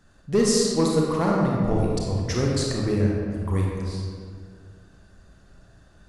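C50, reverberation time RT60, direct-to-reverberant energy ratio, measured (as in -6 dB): -1.0 dB, 2.1 s, -3.0 dB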